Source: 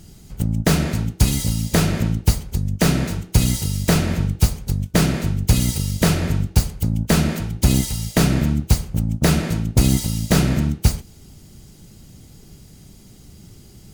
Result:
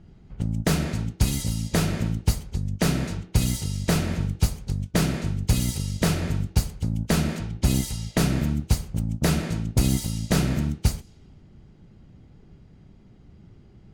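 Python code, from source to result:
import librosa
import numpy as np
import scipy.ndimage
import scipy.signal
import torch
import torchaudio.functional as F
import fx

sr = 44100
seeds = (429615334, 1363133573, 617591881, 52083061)

y = fx.env_lowpass(x, sr, base_hz=1800.0, full_db=-14.5)
y = y * 10.0 ** (-5.5 / 20.0)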